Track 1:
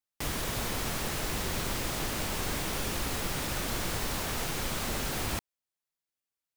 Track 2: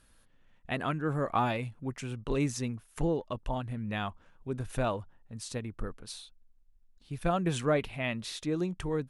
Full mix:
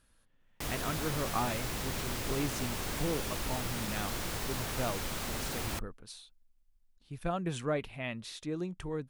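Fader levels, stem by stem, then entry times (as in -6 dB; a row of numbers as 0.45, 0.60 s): -4.0, -5.0 dB; 0.40, 0.00 s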